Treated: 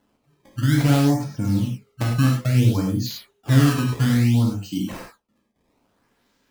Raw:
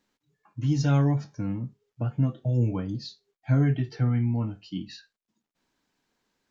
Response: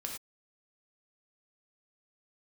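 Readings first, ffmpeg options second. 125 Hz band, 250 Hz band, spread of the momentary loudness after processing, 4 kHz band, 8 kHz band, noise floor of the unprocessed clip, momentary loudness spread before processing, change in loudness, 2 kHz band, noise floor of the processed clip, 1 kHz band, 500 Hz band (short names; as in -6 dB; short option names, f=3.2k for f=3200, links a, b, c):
+6.0 dB, +8.0 dB, 12 LU, +12.0 dB, n/a, under -85 dBFS, 15 LU, +6.5 dB, +12.5 dB, -70 dBFS, +8.5 dB, +5.5 dB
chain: -filter_complex "[0:a]asplit=2[a][b];[b]acompressor=threshold=-31dB:ratio=6,volume=0.5dB[c];[a][c]amix=inputs=2:normalize=0,acrusher=samples=18:mix=1:aa=0.000001:lfo=1:lforange=28.8:lforate=0.59[d];[1:a]atrim=start_sample=2205[e];[d][e]afir=irnorm=-1:irlink=0,volume=4dB"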